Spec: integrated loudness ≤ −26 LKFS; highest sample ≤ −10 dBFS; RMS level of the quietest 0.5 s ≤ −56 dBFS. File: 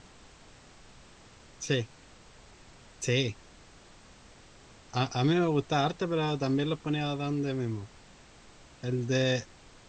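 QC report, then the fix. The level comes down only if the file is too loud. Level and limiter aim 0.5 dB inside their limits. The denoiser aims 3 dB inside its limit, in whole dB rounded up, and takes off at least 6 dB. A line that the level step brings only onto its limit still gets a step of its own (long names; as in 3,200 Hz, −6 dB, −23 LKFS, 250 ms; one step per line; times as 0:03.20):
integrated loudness −30.0 LKFS: in spec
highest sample −13.5 dBFS: in spec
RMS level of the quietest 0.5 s −54 dBFS: out of spec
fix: broadband denoise 6 dB, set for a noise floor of −54 dBFS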